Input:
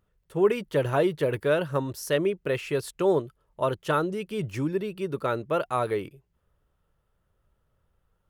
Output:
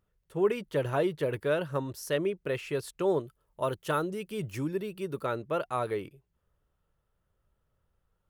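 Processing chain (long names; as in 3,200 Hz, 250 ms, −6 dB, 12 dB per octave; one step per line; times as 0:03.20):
0:03.20–0:05.25: high-shelf EQ 8,900 Hz +10 dB
level −4.5 dB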